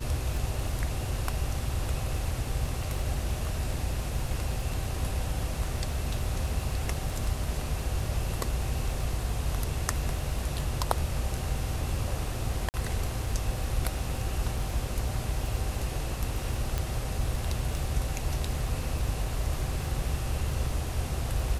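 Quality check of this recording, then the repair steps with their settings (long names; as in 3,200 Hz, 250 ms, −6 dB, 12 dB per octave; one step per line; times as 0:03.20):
surface crackle 24 per second −35 dBFS
0:12.69–0:12.74: drop-out 49 ms
0:16.78: click −15 dBFS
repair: click removal
repair the gap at 0:12.69, 49 ms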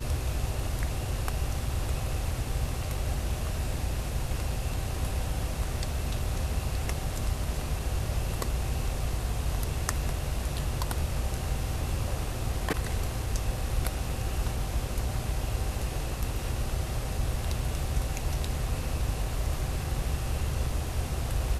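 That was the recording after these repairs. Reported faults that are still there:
none of them is left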